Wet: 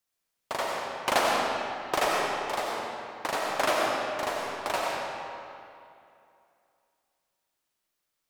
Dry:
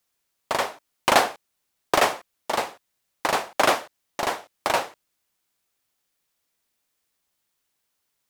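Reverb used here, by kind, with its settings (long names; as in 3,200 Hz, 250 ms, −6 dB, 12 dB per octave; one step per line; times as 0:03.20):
comb and all-pass reverb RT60 2.6 s, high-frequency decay 0.75×, pre-delay 50 ms, DRR −2.5 dB
level −8 dB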